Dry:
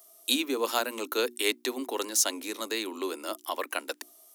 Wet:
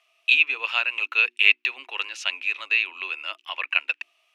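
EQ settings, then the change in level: high-pass 1.1 kHz 12 dB/octave; resonant low-pass 2.6 kHz, resonance Q 12; 0.0 dB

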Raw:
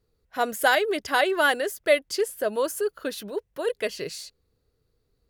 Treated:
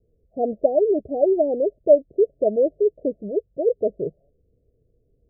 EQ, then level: steep low-pass 680 Hz 96 dB/octave; +7.0 dB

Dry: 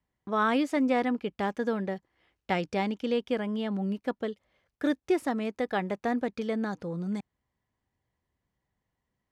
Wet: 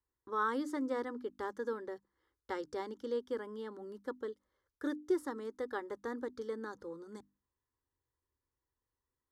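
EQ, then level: hum notches 50/100/150/200/250/300 Hz; static phaser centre 680 Hz, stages 6; -5.5 dB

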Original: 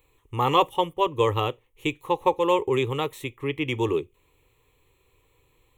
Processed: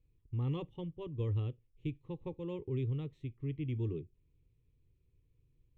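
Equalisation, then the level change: distance through air 200 m; amplifier tone stack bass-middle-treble 10-0-1; peaking EQ 180 Hz +11.5 dB 2 oct; +1.0 dB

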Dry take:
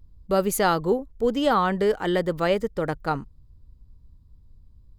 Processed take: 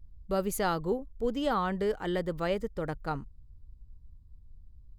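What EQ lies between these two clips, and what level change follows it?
bass shelf 100 Hz +9.5 dB; -8.5 dB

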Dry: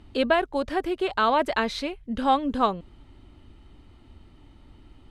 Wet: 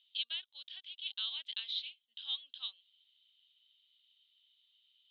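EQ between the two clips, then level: Butterworth band-pass 3.4 kHz, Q 4.3; +2.0 dB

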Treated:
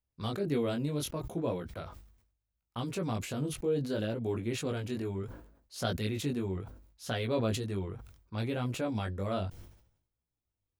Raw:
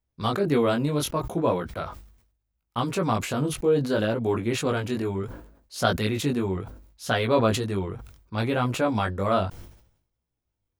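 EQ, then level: dynamic bell 1.1 kHz, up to -8 dB, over -39 dBFS, Q 1; peaking EQ 89 Hz +2.5 dB; -7.5 dB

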